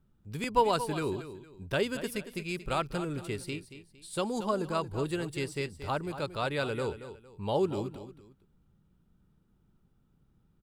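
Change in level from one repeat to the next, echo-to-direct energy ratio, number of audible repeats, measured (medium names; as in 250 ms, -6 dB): -10.0 dB, -11.5 dB, 2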